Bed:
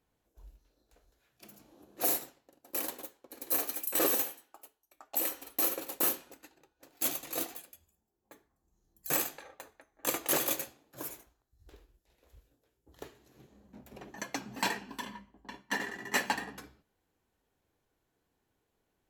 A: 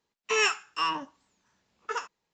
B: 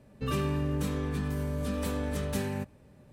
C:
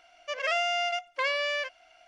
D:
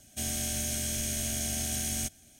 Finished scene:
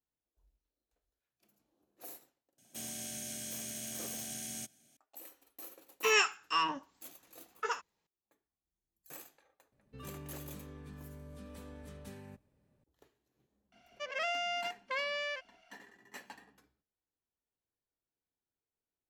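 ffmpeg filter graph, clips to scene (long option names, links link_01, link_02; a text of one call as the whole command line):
ffmpeg -i bed.wav -i cue0.wav -i cue1.wav -i cue2.wav -i cue3.wav -filter_complex "[0:a]volume=-19.5dB[link_01];[4:a]highpass=frequency=130:width=0.5412,highpass=frequency=130:width=1.3066,atrim=end=2.39,asetpts=PTS-STARTPTS,volume=-9.5dB,afade=type=in:duration=0.004:curve=hsin,afade=type=out:start_time=2.386:duration=0.004:curve=hsin,adelay=2580[link_02];[1:a]atrim=end=2.33,asetpts=PTS-STARTPTS,volume=-2.5dB,afade=type=in:duration=0.004:curve=hsin,afade=type=out:start_time=2.326:duration=0.004:curve=hsin,adelay=5740[link_03];[2:a]atrim=end=3.12,asetpts=PTS-STARTPTS,volume=-17.5dB,afade=type=in:duration=0.004:curve=hsin,afade=type=out:start_time=3.116:duration=0.004:curve=hsin,adelay=9720[link_04];[3:a]atrim=end=2.07,asetpts=PTS-STARTPTS,volume=-7.5dB,afade=type=in:duration=0.004:curve=hsin,afade=type=out:start_time=2.066:duration=0.004:curve=hsin,adelay=13720[link_05];[link_01][link_02][link_03][link_04][link_05]amix=inputs=5:normalize=0" out.wav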